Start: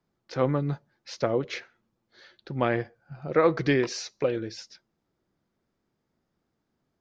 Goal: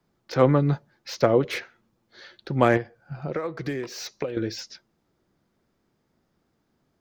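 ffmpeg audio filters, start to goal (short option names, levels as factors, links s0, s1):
-filter_complex "[0:a]acrossover=split=500|2100[s0][s1][s2];[s2]asoftclip=type=hard:threshold=0.0126[s3];[s0][s1][s3]amix=inputs=3:normalize=0,asettb=1/sr,asplit=3[s4][s5][s6];[s4]atrim=end=2.774[s7];[s5]atrim=start=2.77:end=4.37,asetpts=PTS-STARTPTS,afade=t=in:d=0.004:c=qsin,afade=t=out:st=1.596:d=0.004:c=qsin,acompressor=threshold=0.0224:ratio=12[s8];[s6]atrim=start=4.366[s9];[s7][s8]acrossfade=d=0.004:c1=hsin:c2=qsin[s10];[s10][s9]acrossfade=d=0.004:c1=qsin:c2=hsin,volume=2.11"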